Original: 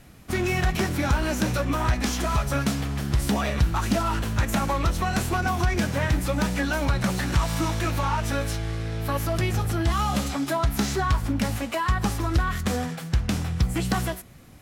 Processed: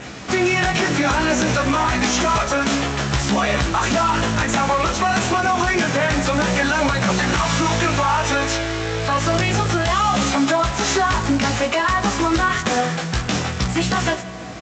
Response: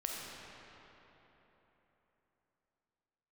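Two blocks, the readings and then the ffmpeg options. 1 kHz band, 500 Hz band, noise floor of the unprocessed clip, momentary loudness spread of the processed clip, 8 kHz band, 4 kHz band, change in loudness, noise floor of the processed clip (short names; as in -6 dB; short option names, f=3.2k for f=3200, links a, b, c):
+9.5 dB, +8.5 dB, -38 dBFS, 4 LU, +9.0 dB, +10.0 dB, +6.5 dB, -29 dBFS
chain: -filter_complex "[0:a]asplit=2[a][b];[b]equalizer=f=490:t=o:w=0.77:g=5.5[c];[1:a]atrim=start_sample=2205[d];[c][d]afir=irnorm=-1:irlink=0,volume=-18.5dB[e];[a][e]amix=inputs=2:normalize=0,acompressor=mode=upward:threshold=-32dB:ratio=2.5,adynamicequalizer=threshold=0.00355:dfrequency=4600:dqfactor=2.7:tfrequency=4600:tqfactor=2.7:attack=5:release=100:ratio=0.375:range=2:mode=cutabove:tftype=bell,aecho=1:1:165:0.075,flanger=delay=15:depth=2.8:speed=0.58,aresample=16000,acrusher=bits=6:mode=log:mix=0:aa=0.000001,aresample=44100,acontrast=44,highpass=f=380:p=1,alimiter=level_in=18.5dB:limit=-1dB:release=50:level=0:latency=1,volume=-8.5dB"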